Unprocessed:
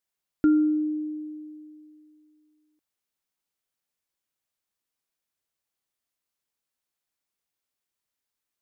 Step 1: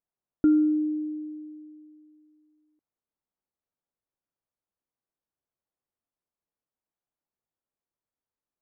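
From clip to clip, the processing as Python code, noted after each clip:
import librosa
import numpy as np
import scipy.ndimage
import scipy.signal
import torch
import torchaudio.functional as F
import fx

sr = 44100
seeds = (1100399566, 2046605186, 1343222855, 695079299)

y = scipy.signal.sosfilt(scipy.signal.butter(2, 1000.0, 'lowpass', fs=sr, output='sos'), x)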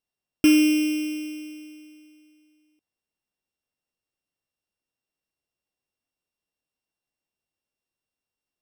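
y = np.r_[np.sort(x[:len(x) // 16 * 16].reshape(-1, 16), axis=1).ravel(), x[len(x) // 16 * 16:]]
y = F.gain(torch.from_numpy(y), 3.5).numpy()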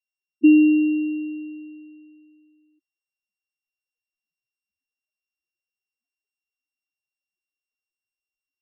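y = fx.spec_topn(x, sr, count=4)
y = F.gain(torch.from_numpy(y), 4.0).numpy()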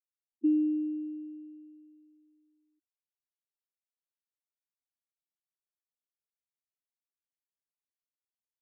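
y = fx.ladder_bandpass(x, sr, hz=380.0, resonance_pct=25)
y = F.gain(torch.from_numpy(y), -3.5).numpy()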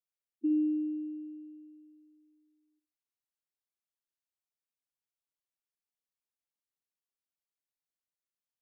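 y = fx.room_flutter(x, sr, wall_m=10.7, rt60_s=0.32)
y = F.gain(torch.from_numpy(y), -4.0).numpy()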